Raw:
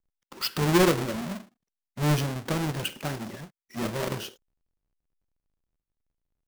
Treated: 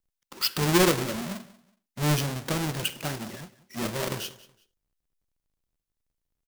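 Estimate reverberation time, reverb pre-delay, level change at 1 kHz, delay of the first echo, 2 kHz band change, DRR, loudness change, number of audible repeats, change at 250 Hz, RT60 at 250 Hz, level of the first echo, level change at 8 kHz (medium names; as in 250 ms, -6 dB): no reverb, no reverb, 0.0 dB, 186 ms, +1.0 dB, no reverb, +0.5 dB, 2, -1.0 dB, no reverb, -19.5 dB, +4.5 dB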